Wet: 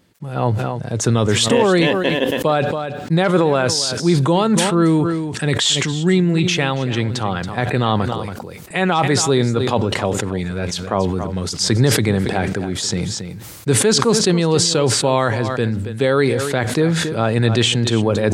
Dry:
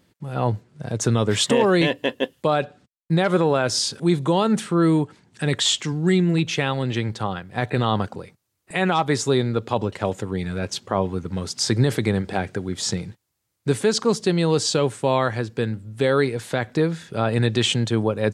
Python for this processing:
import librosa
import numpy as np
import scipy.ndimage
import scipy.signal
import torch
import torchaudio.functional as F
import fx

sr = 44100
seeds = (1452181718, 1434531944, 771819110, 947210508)

y = x + 10.0 ** (-14.5 / 20.0) * np.pad(x, (int(278 * sr / 1000.0), 0))[:len(x)]
y = fx.sustainer(y, sr, db_per_s=31.0)
y = F.gain(torch.from_numpy(y), 3.0).numpy()